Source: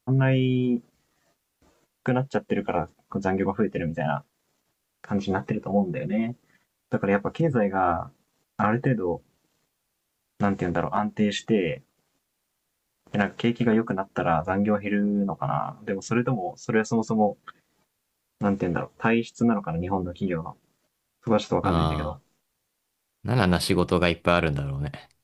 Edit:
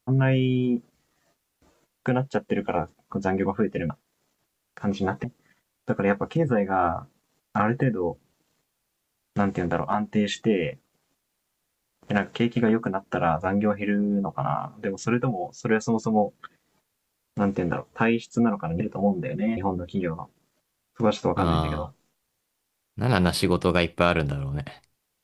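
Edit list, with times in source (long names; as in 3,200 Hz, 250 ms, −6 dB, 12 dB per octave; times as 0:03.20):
0:03.90–0:04.17: remove
0:05.51–0:06.28: move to 0:19.84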